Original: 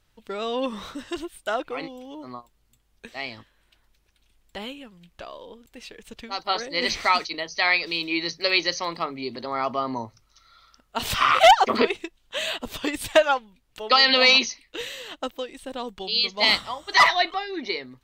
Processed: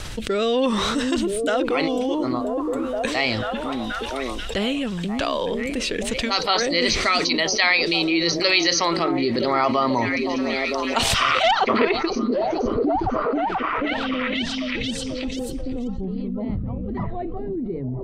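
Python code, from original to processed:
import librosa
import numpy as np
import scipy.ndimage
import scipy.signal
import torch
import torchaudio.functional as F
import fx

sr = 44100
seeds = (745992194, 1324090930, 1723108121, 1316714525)

p1 = fx.filter_sweep_lowpass(x, sr, from_hz=9400.0, to_hz=120.0, start_s=11.14, end_s=13.18, q=1.1)
p2 = fx.rotary_switch(p1, sr, hz=0.9, then_hz=6.3, switch_at_s=12.35)
p3 = p2 + fx.echo_stepped(p2, sr, ms=485, hz=240.0, octaves=0.7, feedback_pct=70, wet_db=-6.0, dry=0)
y = fx.env_flatten(p3, sr, amount_pct=70)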